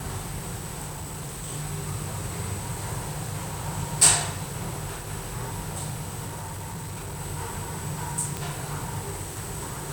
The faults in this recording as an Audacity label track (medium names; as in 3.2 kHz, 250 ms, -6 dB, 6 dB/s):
0.860000	1.500000	clipped -31.5 dBFS
6.270000	7.210000	clipped -32 dBFS
8.370000	8.370000	pop